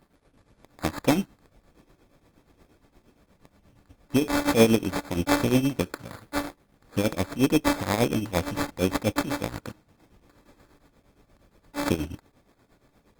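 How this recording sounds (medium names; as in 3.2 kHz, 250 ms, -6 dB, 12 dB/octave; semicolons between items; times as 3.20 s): a buzz of ramps at a fixed pitch in blocks of 8 samples; tremolo triangle 8.5 Hz, depth 80%; aliases and images of a low sample rate 2.9 kHz, jitter 0%; Opus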